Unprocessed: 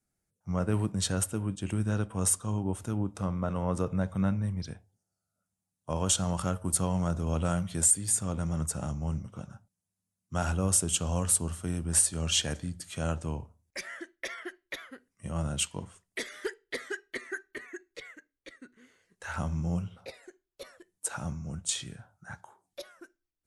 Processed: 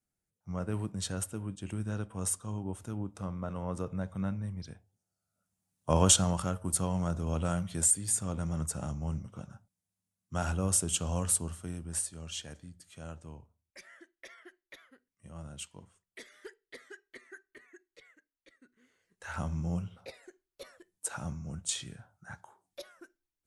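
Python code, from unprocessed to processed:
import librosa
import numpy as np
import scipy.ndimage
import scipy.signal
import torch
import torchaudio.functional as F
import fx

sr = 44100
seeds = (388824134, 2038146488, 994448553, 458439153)

y = fx.gain(x, sr, db=fx.line((4.72, -6.0), (6.0, 6.5), (6.46, -2.5), (11.3, -2.5), (12.3, -13.0), (18.52, -13.0), (19.37, -2.5)))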